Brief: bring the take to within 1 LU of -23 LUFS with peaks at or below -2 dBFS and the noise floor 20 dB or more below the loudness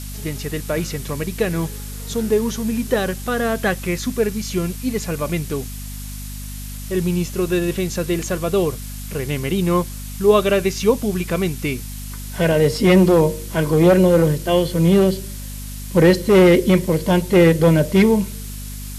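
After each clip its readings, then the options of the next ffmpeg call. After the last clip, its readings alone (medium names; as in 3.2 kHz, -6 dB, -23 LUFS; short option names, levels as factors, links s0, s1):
hum 50 Hz; highest harmonic 250 Hz; hum level -29 dBFS; noise floor -31 dBFS; noise floor target -39 dBFS; loudness -18.5 LUFS; peak level -3.5 dBFS; loudness target -23.0 LUFS
-> -af "bandreject=f=50:t=h:w=6,bandreject=f=100:t=h:w=6,bandreject=f=150:t=h:w=6,bandreject=f=200:t=h:w=6,bandreject=f=250:t=h:w=6"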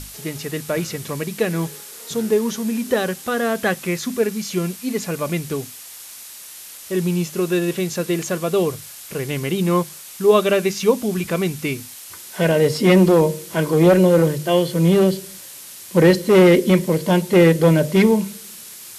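hum not found; noise floor -38 dBFS; noise floor target -39 dBFS
-> -af "afftdn=nr=6:nf=-38"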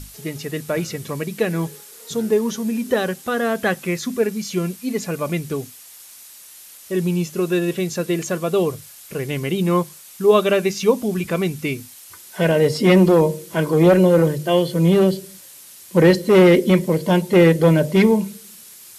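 noise floor -43 dBFS; loudness -18.5 LUFS; peak level -3.0 dBFS; loudness target -23.0 LUFS
-> -af "volume=0.596"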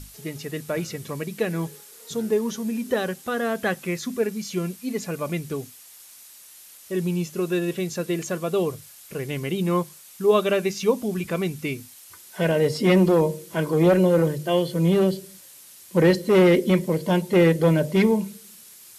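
loudness -23.0 LUFS; peak level -7.5 dBFS; noise floor -47 dBFS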